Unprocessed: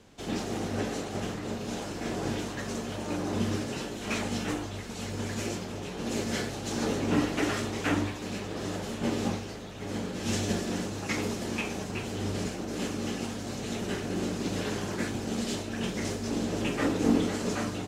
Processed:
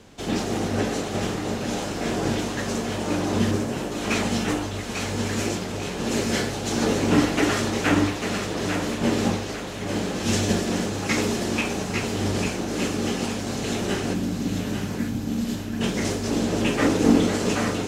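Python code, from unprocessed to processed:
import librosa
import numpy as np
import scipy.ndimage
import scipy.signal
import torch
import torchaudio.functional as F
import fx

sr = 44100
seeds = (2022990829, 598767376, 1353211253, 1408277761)

y = fx.peak_eq(x, sr, hz=4200.0, db=-9.5, octaves=2.1, at=(3.51, 3.92))
y = fx.spec_box(y, sr, start_s=14.14, length_s=1.67, low_hz=320.0, high_hz=11000.0, gain_db=-10)
y = fx.echo_thinned(y, sr, ms=846, feedback_pct=38, hz=420.0, wet_db=-6.5)
y = y * librosa.db_to_amplitude(7.0)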